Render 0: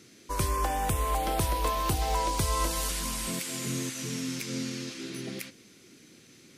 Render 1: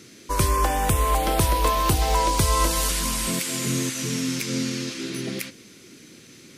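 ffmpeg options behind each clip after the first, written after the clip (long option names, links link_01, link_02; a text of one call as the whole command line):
ffmpeg -i in.wav -af "equalizer=frequency=750:width_type=o:width=0.22:gain=-3.5,volume=7.5dB" out.wav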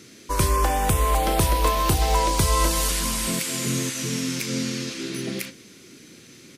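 ffmpeg -i in.wav -filter_complex "[0:a]asplit=2[link_01][link_02];[link_02]adelay=36,volume=-13dB[link_03];[link_01][link_03]amix=inputs=2:normalize=0" out.wav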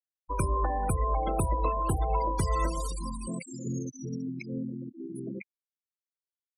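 ffmpeg -i in.wav -af "afftfilt=real='re*gte(hypot(re,im),0.1)':imag='im*gte(hypot(re,im),0.1)':win_size=1024:overlap=0.75,volume=-6.5dB" out.wav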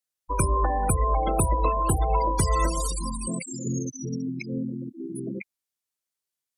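ffmpeg -i in.wav -af "equalizer=frequency=9400:width=0.42:gain=6,volume=4.5dB" out.wav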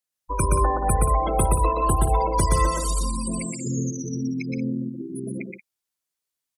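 ffmpeg -i in.wav -af "aecho=1:1:122.4|180.8:0.794|0.282" out.wav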